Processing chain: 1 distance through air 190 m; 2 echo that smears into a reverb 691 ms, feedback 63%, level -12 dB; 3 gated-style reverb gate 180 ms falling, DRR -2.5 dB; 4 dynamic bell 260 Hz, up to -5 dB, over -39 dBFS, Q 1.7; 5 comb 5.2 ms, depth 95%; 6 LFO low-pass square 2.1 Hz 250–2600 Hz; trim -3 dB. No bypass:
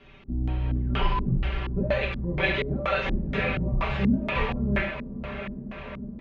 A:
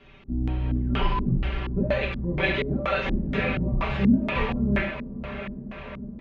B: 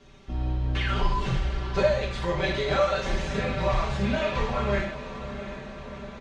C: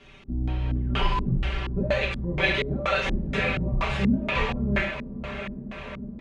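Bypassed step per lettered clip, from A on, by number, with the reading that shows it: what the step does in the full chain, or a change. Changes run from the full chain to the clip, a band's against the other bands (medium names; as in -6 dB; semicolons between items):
4, 250 Hz band +3.0 dB; 6, 250 Hz band -6.5 dB; 1, 4 kHz band +3.5 dB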